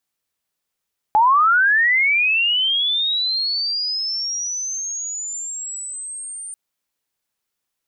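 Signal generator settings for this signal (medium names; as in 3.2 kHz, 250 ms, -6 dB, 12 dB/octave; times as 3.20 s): sweep linear 830 Hz -> 9 kHz -10.5 dBFS -> -29.5 dBFS 5.39 s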